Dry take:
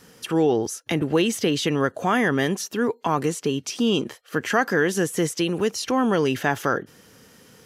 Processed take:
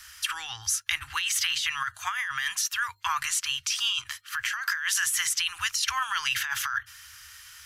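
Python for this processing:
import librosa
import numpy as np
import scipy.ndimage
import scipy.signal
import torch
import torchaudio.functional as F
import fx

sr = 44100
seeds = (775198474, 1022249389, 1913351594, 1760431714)

y = scipy.signal.sosfilt(scipy.signal.cheby2(4, 50, [160.0, 610.0], 'bandstop', fs=sr, output='sos'), x)
y = fx.over_compress(y, sr, threshold_db=-32.0, ratio=-1.0)
y = fx.hum_notches(y, sr, base_hz=50, count=7)
y = y * 10.0 ** (4.5 / 20.0)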